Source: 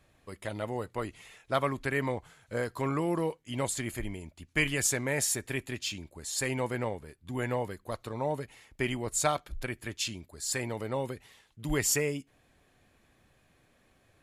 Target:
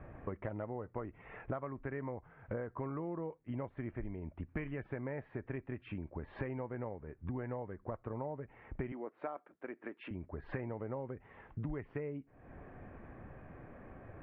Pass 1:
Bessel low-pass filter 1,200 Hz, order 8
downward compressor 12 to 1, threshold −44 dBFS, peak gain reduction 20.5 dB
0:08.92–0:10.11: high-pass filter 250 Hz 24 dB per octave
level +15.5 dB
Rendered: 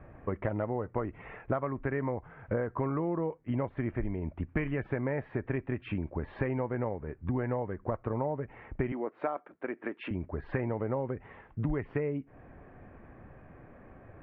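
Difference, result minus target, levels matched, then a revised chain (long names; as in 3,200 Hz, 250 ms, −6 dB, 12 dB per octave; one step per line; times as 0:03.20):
downward compressor: peak gain reduction −8.5 dB
Bessel low-pass filter 1,200 Hz, order 8
downward compressor 12 to 1, threshold −53.5 dBFS, peak gain reduction 29.5 dB
0:08.92–0:10.11: high-pass filter 250 Hz 24 dB per octave
level +15.5 dB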